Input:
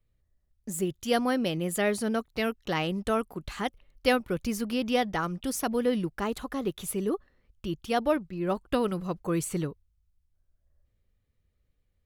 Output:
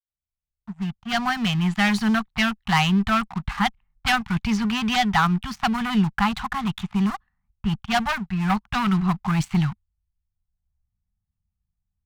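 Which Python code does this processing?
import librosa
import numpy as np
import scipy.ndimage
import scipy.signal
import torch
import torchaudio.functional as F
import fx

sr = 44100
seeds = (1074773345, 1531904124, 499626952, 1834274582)

y = fx.fade_in_head(x, sr, length_s=1.82)
y = scipy.signal.sosfilt(scipy.signal.butter(2, 4200.0, 'lowpass', fs=sr, output='sos'), y)
y = fx.env_lowpass(y, sr, base_hz=740.0, full_db=-22.5)
y = fx.low_shelf(y, sr, hz=90.0, db=-4.0)
y = fx.leveller(y, sr, passes=3)
y = scipy.signal.sosfilt(scipy.signal.ellip(3, 1.0, 40, [210.0, 780.0], 'bandstop', fs=sr, output='sos'), y)
y = fx.cheby_harmonics(y, sr, harmonics=(6,), levels_db=(-27,), full_scale_db=-9.0)
y = y * librosa.db_to_amplitude(3.5)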